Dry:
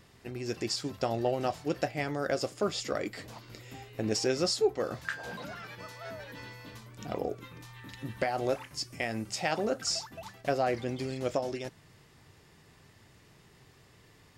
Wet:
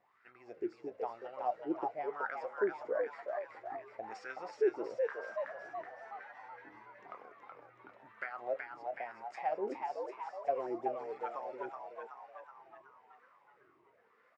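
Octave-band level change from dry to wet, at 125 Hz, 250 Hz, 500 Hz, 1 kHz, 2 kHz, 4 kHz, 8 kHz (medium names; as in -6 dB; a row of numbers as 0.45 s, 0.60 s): under -25 dB, -9.5 dB, -5.0 dB, -2.0 dB, -6.5 dB, under -25 dB, under -30 dB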